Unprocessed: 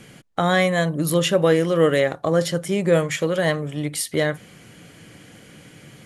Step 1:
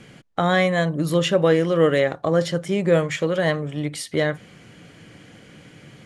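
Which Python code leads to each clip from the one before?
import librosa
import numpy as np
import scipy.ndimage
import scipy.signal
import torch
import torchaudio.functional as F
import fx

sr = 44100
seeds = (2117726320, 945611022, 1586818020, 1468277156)

y = fx.air_absorb(x, sr, metres=61.0)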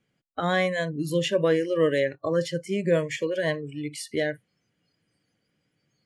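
y = fx.noise_reduce_blind(x, sr, reduce_db=24)
y = F.gain(torch.from_numpy(y), -4.5).numpy()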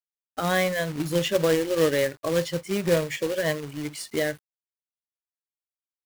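y = fx.quant_companded(x, sr, bits=4)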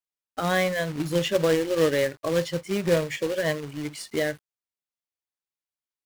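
y = fx.high_shelf(x, sr, hz=8800.0, db=-5.5)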